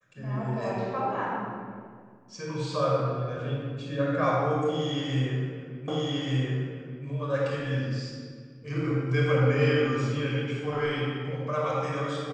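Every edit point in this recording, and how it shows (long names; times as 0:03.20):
0:05.88: the same again, the last 1.18 s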